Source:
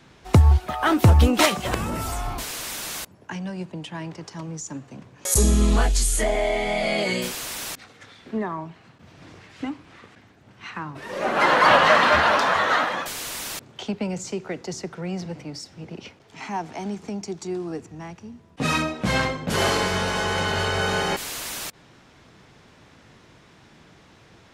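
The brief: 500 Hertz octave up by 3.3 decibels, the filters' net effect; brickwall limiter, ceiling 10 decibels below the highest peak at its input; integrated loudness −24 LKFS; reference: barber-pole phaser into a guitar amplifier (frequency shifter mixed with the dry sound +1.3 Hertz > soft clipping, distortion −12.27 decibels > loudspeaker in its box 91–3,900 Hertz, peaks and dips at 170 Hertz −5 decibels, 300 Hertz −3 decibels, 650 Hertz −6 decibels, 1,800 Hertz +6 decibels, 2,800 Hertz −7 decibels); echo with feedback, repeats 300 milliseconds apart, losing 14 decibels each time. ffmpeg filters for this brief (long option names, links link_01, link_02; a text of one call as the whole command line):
ffmpeg -i in.wav -filter_complex "[0:a]equalizer=frequency=500:width_type=o:gain=7.5,alimiter=limit=-10.5dB:level=0:latency=1,aecho=1:1:300|600:0.2|0.0399,asplit=2[link_01][link_02];[link_02]afreqshift=1.3[link_03];[link_01][link_03]amix=inputs=2:normalize=1,asoftclip=threshold=-21dB,highpass=91,equalizer=frequency=170:width_type=q:width=4:gain=-5,equalizer=frequency=300:width_type=q:width=4:gain=-3,equalizer=frequency=650:width_type=q:width=4:gain=-6,equalizer=frequency=1800:width_type=q:width=4:gain=6,equalizer=frequency=2800:width_type=q:width=4:gain=-7,lowpass=frequency=3900:width=0.5412,lowpass=frequency=3900:width=1.3066,volume=7dB" out.wav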